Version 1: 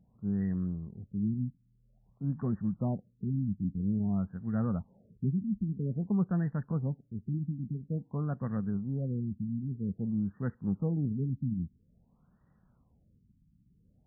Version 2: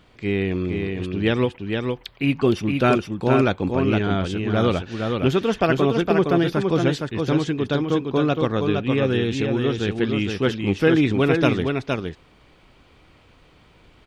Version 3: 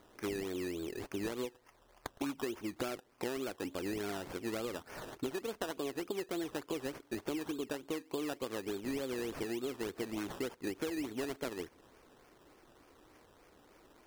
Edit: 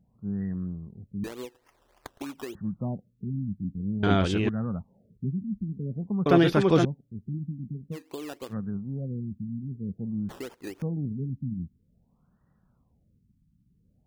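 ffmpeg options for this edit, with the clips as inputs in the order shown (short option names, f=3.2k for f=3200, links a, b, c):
-filter_complex "[2:a]asplit=3[a][b][c];[1:a]asplit=2[d][e];[0:a]asplit=6[f][g][h][i][j][k];[f]atrim=end=1.242[l];[a]atrim=start=1.238:end=2.552[m];[g]atrim=start=2.548:end=4.032[n];[d]atrim=start=4.028:end=4.492[o];[h]atrim=start=4.488:end=6.262[p];[e]atrim=start=6.258:end=6.852[q];[i]atrim=start=6.848:end=7.97[r];[b]atrim=start=7.91:end=8.54[s];[j]atrim=start=8.48:end=10.292[t];[c]atrim=start=10.288:end=10.822[u];[k]atrim=start=10.818[v];[l][m]acrossfade=d=0.004:c1=hsin:c2=hsin[w];[w][n]acrossfade=d=0.004:c1=hsin:c2=hsin[x];[x][o]acrossfade=d=0.004:c1=hsin:c2=hsin[y];[y][p]acrossfade=d=0.004:c1=hsin:c2=hsin[z];[z][q]acrossfade=d=0.004:c1=hsin:c2=hsin[aa];[aa][r]acrossfade=d=0.004:c1=hsin:c2=hsin[ab];[ab][s]acrossfade=d=0.06:c1=tri:c2=tri[ac];[ac][t]acrossfade=d=0.06:c1=tri:c2=tri[ad];[ad][u]acrossfade=d=0.004:c1=hsin:c2=hsin[ae];[ae][v]acrossfade=d=0.004:c1=hsin:c2=hsin"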